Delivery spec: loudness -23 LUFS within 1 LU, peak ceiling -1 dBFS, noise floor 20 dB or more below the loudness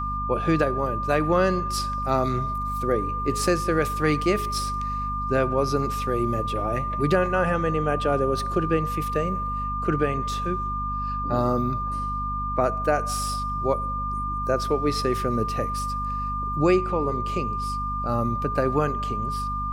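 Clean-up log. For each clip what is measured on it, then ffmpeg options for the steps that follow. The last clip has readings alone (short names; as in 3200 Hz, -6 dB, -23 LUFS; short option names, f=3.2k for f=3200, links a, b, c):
hum 50 Hz; harmonics up to 250 Hz; hum level -29 dBFS; steady tone 1200 Hz; tone level -27 dBFS; loudness -25.0 LUFS; peak -8.0 dBFS; loudness target -23.0 LUFS
-> -af "bandreject=f=50:t=h:w=6,bandreject=f=100:t=h:w=6,bandreject=f=150:t=h:w=6,bandreject=f=200:t=h:w=6,bandreject=f=250:t=h:w=6"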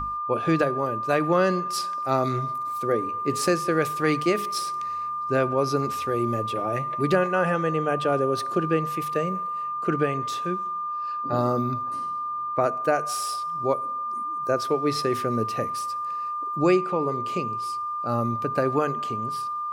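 hum none; steady tone 1200 Hz; tone level -27 dBFS
-> -af "bandreject=f=1.2k:w=30"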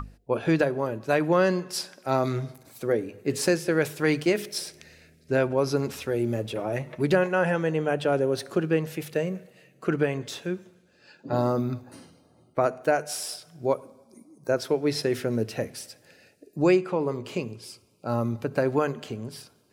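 steady tone none; loudness -27.0 LUFS; peak -9.5 dBFS; loudness target -23.0 LUFS
-> -af "volume=4dB"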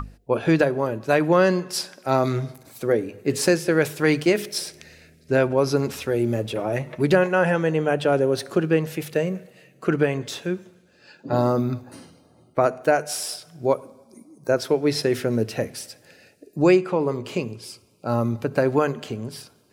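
loudness -23.0 LUFS; peak -5.5 dBFS; noise floor -57 dBFS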